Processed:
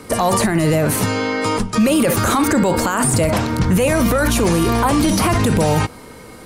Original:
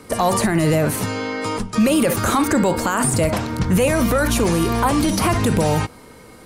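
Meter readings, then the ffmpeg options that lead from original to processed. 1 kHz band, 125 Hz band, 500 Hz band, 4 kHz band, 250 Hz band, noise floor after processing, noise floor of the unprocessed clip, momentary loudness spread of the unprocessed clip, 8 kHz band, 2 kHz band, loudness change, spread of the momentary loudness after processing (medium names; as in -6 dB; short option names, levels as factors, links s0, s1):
+2.0 dB, +2.5 dB, +2.0 dB, +2.5 dB, +2.0 dB, -38 dBFS, -43 dBFS, 6 LU, +2.5 dB, +2.5 dB, +2.0 dB, 4 LU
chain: -af "alimiter=limit=0.224:level=0:latency=1:release=13,volume=1.78"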